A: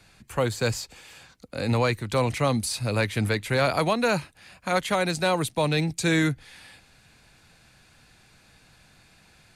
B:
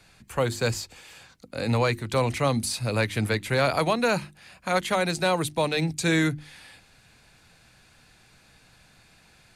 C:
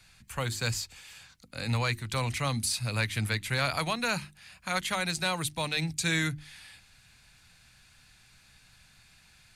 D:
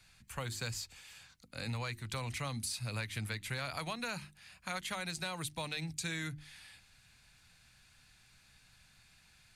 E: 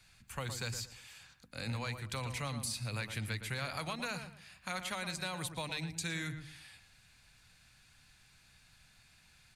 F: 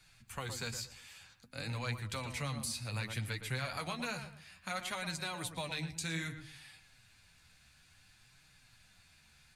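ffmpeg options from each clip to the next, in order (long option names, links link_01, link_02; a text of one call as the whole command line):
ffmpeg -i in.wav -af "bandreject=frequency=50:width_type=h:width=6,bandreject=frequency=100:width_type=h:width=6,bandreject=frequency=150:width_type=h:width=6,bandreject=frequency=200:width_type=h:width=6,bandreject=frequency=250:width_type=h:width=6,bandreject=frequency=300:width_type=h:width=6,bandreject=frequency=350:width_type=h:width=6" out.wav
ffmpeg -i in.wav -af "equalizer=frequency=430:width_type=o:width=2.3:gain=-13" out.wav
ffmpeg -i in.wav -af "acompressor=threshold=-30dB:ratio=6,volume=-5dB" out.wav
ffmpeg -i in.wav -filter_complex "[0:a]asplit=2[link_01][link_02];[link_02]adelay=115,lowpass=frequency=1900:poles=1,volume=-8dB,asplit=2[link_03][link_04];[link_04]adelay=115,lowpass=frequency=1900:poles=1,volume=0.29,asplit=2[link_05][link_06];[link_06]adelay=115,lowpass=frequency=1900:poles=1,volume=0.29[link_07];[link_01][link_03][link_05][link_07]amix=inputs=4:normalize=0" out.wav
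ffmpeg -i in.wav -af "flanger=delay=6.2:depth=8.3:regen=33:speed=0.59:shape=triangular,volume=3.5dB" out.wav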